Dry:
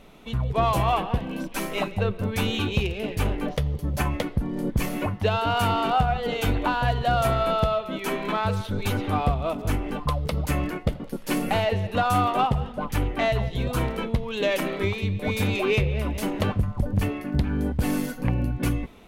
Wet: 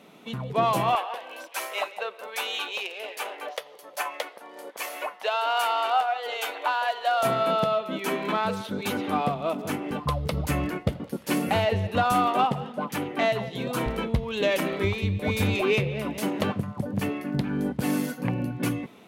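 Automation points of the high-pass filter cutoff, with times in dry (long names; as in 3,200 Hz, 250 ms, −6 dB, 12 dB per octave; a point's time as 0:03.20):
high-pass filter 24 dB per octave
150 Hz
from 0:00.95 560 Hz
from 0:07.23 160 Hz
from 0:09.91 74 Hz
from 0:12.12 160 Hz
from 0:13.86 43 Hz
from 0:15.61 130 Hz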